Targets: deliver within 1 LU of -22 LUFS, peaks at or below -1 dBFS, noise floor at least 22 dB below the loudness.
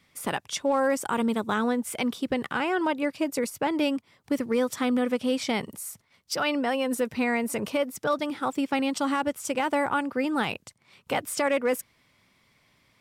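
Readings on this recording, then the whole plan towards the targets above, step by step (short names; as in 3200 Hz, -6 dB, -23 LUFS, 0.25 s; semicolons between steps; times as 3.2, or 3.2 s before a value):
clipped 0.2%; flat tops at -17.0 dBFS; loudness -27.5 LUFS; peak -17.0 dBFS; loudness target -22.0 LUFS
-> clip repair -17 dBFS; gain +5.5 dB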